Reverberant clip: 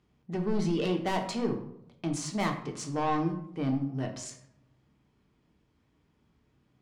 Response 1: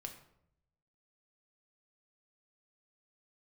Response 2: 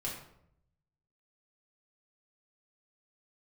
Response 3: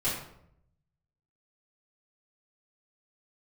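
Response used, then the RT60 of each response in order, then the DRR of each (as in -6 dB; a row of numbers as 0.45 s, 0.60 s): 1; 0.75 s, 0.75 s, 0.75 s; 3.5 dB, -5.0 dB, -12.0 dB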